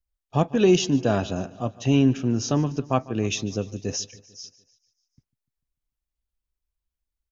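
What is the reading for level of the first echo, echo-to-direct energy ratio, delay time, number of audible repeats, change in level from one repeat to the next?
−20.5 dB, −18.5 dB, 148 ms, 4, −4.5 dB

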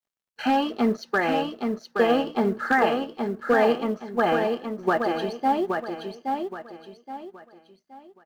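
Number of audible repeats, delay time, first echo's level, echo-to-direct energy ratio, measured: 4, 822 ms, −5.0 dB, −4.5 dB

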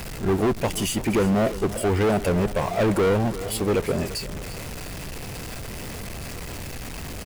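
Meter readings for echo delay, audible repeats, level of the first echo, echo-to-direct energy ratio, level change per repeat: 344 ms, 2, −15.0 dB, −14.0 dB, −7.0 dB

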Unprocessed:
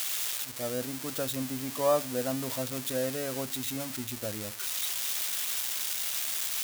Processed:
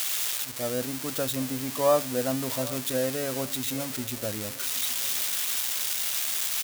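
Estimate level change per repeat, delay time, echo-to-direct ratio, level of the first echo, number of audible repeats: −9.5 dB, 776 ms, −19.0 dB, −19.5 dB, 2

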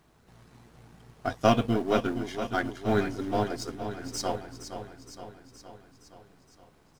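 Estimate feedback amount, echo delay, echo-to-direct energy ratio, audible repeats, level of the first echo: 60%, 467 ms, −8.0 dB, 6, −10.0 dB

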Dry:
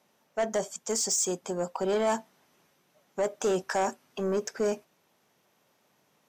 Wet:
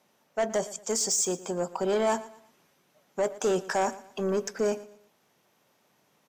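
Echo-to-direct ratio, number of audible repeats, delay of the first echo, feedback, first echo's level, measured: −17.5 dB, 2, 116 ms, 34%, −18.0 dB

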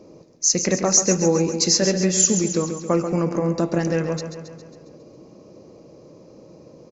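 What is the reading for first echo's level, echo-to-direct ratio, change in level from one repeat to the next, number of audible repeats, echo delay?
−9.0 dB, −7.0 dB, −4.5 dB, 6, 136 ms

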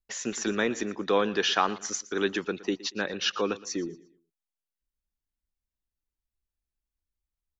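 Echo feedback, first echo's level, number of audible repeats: 34%, −19.0 dB, 2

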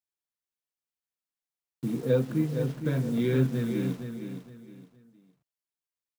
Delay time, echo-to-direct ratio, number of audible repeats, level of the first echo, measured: 464 ms, −7.5 dB, 3, −8.0 dB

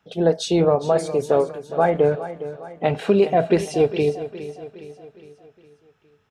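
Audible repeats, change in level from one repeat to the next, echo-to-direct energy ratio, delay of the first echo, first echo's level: 4, −6.0 dB, −12.5 dB, 411 ms, −13.5 dB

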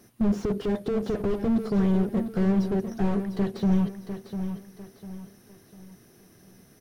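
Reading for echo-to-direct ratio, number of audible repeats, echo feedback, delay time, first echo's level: −8.5 dB, 4, 37%, 700 ms, −9.0 dB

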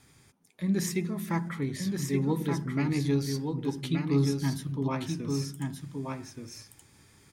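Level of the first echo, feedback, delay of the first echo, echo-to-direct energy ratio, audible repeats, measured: −4.5 dB, repeats not evenly spaced, 1,175 ms, −4.5 dB, 1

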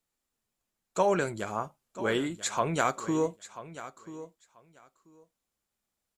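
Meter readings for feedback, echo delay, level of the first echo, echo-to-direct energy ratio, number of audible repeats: 16%, 987 ms, −15.0 dB, −15.0 dB, 2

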